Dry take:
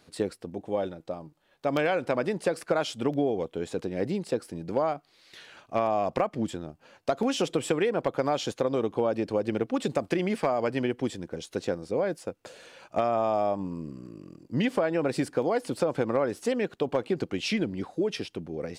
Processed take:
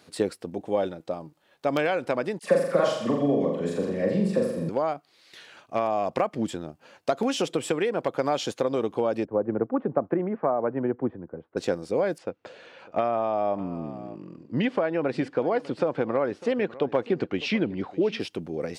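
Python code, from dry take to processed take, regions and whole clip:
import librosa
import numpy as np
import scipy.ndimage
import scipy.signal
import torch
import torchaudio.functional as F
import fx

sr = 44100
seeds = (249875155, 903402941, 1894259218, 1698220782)

y = fx.chain(x, sr, fx.small_body(hz=(200.0, 560.0, 1100.0, 1800.0), ring_ms=25, db=11),
    fx.dispersion(late='lows', ms=45.0, hz=1400.0),
    fx.room_flutter(wall_m=7.3, rt60_s=0.74), at=(2.39, 4.69))
y = fx.chain(y, sr, fx.lowpass(hz=1400.0, slope=24),
    fx.band_widen(depth_pct=70), at=(9.25, 11.57))
y = fx.chain(y, sr, fx.lowpass(hz=3300.0, slope=12),
    fx.echo_single(ms=601, db=-19.5), at=(12.18, 18.2))
y = fx.highpass(y, sr, hz=130.0, slope=6)
y = fx.rider(y, sr, range_db=4, speed_s=0.5)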